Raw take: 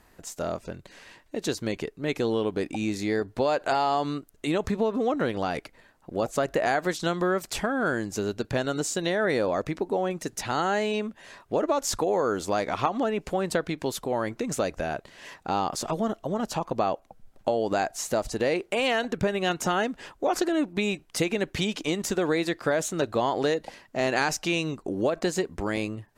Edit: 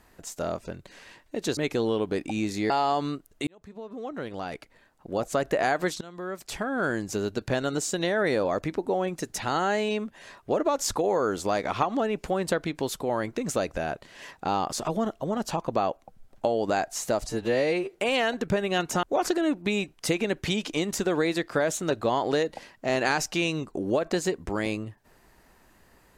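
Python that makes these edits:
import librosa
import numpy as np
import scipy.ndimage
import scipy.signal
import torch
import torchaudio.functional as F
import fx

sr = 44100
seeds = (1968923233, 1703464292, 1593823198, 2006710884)

y = fx.edit(x, sr, fx.cut(start_s=1.57, length_s=0.45),
    fx.cut(start_s=3.15, length_s=0.58),
    fx.fade_in_span(start_s=4.5, length_s=1.94),
    fx.fade_in_from(start_s=7.04, length_s=0.93, floor_db=-23.0),
    fx.stretch_span(start_s=18.32, length_s=0.32, factor=2.0),
    fx.cut(start_s=19.74, length_s=0.4), tone=tone)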